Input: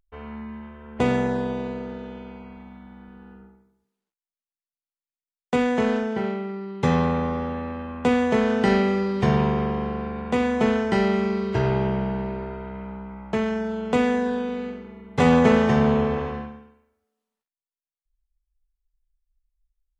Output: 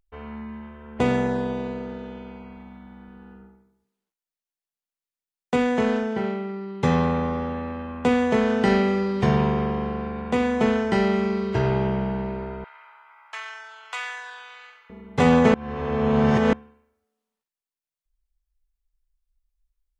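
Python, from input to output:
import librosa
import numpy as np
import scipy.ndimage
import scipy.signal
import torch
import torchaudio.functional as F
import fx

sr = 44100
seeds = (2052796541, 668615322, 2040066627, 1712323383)

y = fx.highpass(x, sr, hz=1100.0, slope=24, at=(12.64, 14.9))
y = fx.edit(y, sr, fx.reverse_span(start_s=15.54, length_s=0.99), tone=tone)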